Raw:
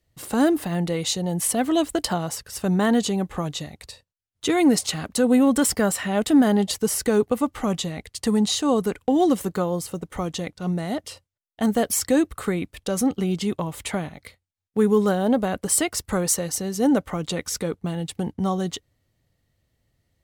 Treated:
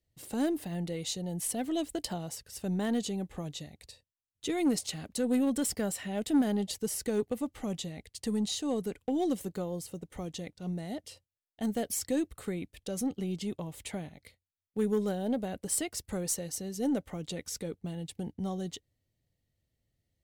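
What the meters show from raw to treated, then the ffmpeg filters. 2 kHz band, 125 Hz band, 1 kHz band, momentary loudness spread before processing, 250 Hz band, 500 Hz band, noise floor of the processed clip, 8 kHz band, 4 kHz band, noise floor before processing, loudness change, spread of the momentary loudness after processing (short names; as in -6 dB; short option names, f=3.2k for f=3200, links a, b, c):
-13.5 dB, -10.0 dB, -14.0 dB, 11 LU, -10.5 dB, -11.0 dB, under -85 dBFS, -10.0 dB, -10.5 dB, -78 dBFS, -10.5 dB, 11 LU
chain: -af "equalizer=f=1.2k:t=o:w=0.99:g=-9,aeval=exprs='0.355*(cos(1*acos(clip(val(0)/0.355,-1,1)))-cos(1*PI/2))+0.0398*(cos(3*acos(clip(val(0)/0.355,-1,1)))-cos(3*PI/2))+0.00501*(cos(4*acos(clip(val(0)/0.355,-1,1)))-cos(4*PI/2))+0.0141*(cos(5*acos(clip(val(0)/0.355,-1,1)))-cos(5*PI/2))':c=same,volume=-8.5dB"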